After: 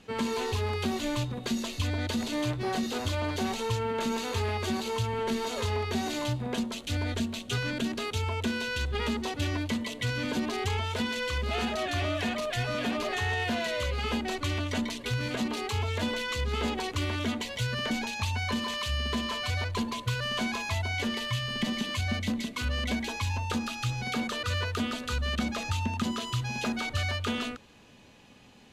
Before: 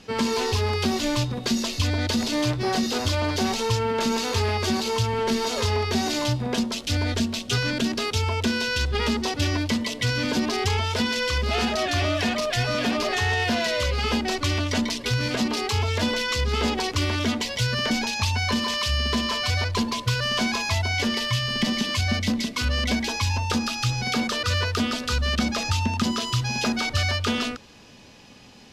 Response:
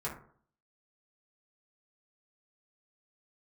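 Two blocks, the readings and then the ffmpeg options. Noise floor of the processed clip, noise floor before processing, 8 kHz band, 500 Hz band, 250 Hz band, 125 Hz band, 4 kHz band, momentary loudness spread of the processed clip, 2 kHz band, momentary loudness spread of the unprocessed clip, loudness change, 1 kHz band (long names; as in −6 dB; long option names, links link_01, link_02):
−44 dBFS, −38 dBFS, −9.0 dB, −6.0 dB, −6.0 dB, −6.0 dB, −8.0 dB, 2 LU, −6.0 dB, 2 LU, −6.5 dB, −6.0 dB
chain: -af "equalizer=frequency=5200:width=3.6:gain=-10,volume=-6dB"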